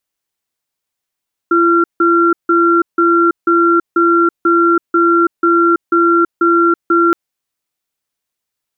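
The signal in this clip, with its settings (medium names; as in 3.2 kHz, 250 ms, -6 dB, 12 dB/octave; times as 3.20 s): cadence 339 Hz, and 1.37 kHz, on 0.33 s, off 0.16 s, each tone -10.5 dBFS 5.62 s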